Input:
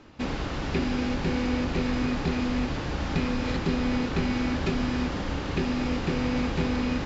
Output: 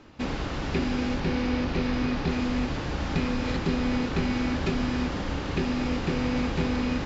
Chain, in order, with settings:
0:01.20–0:02.29: low-pass filter 6,400 Hz 24 dB per octave

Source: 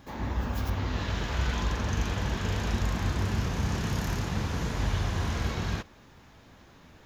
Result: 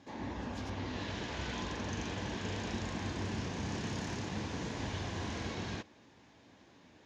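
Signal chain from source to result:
loudspeaker in its box 120–7,700 Hz, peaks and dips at 150 Hz −5 dB, 300 Hz +4 dB, 1,300 Hz −7 dB
level −5 dB

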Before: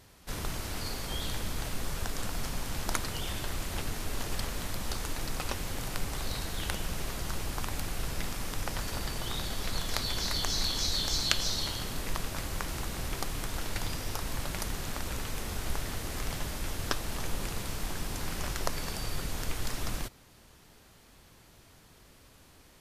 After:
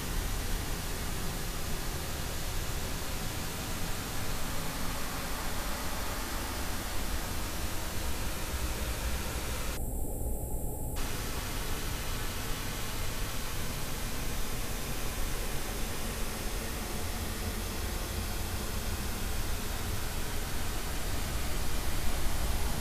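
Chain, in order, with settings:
extreme stretch with random phases 23×, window 0.25 s, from 0:14.72
gain on a spectral selection 0:09.77–0:10.97, 890–7,300 Hz −23 dB
level +1 dB

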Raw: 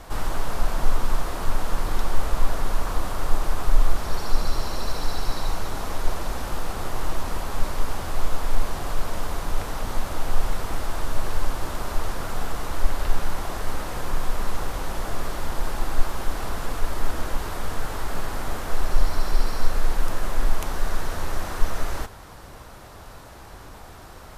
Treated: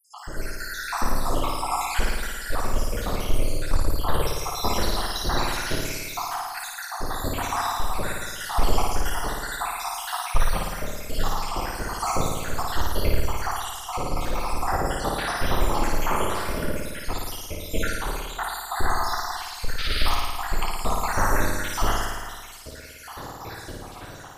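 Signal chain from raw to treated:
time-frequency cells dropped at random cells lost 83%
low-shelf EQ 70 Hz −9 dB
automatic gain control gain up to 13 dB
sound drawn into the spectrogram noise, 0:19.78–0:20.06, 1,200–5,000 Hz −27 dBFS
soft clipping −9.5 dBFS, distortion −14 dB
sample-and-hold tremolo
on a send: flutter between parallel walls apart 9.5 metres, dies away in 1.4 s

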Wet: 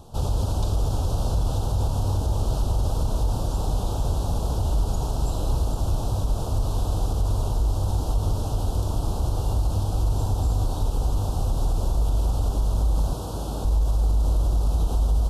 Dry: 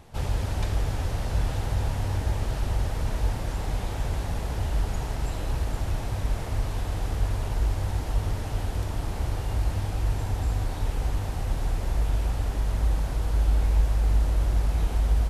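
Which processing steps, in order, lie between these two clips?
0:13.13–0:13.65: high-pass filter 120 Hz 12 dB per octave
brickwall limiter −19.5 dBFS, peak gain reduction 8 dB
Butterworth band-reject 2,000 Hz, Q 0.92
level +5 dB

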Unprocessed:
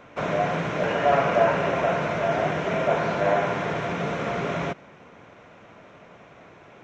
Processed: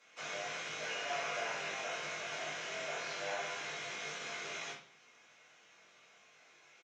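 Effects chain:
resonant band-pass 6,500 Hz, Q 1.3
double-tracking delay 20 ms −5 dB
convolution reverb RT60 0.40 s, pre-delay 4 ms, DRR −4 dB
level −4 dB

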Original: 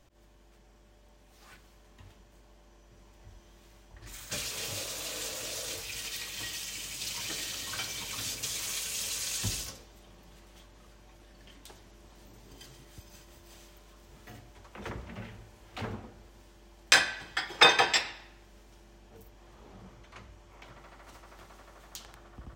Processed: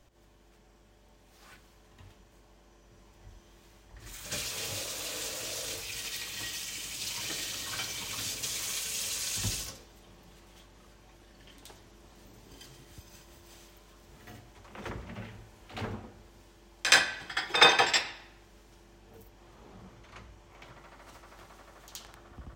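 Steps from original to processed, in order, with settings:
backwards echo 72 ms −10.5 dB

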